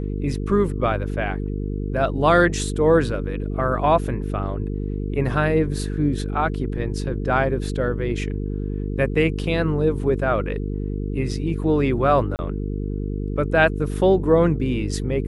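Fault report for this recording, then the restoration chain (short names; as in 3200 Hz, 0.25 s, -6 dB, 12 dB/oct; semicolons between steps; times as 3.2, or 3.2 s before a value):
buzz 50 Hz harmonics 9 -26 dBFS
12.36–12.39 gap 29 ms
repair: de-hum 50 Hz, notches 9; interpolate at 12.36, 29 ms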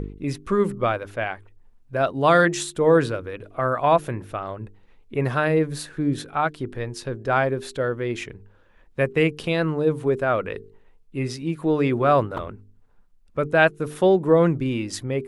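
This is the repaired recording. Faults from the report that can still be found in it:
none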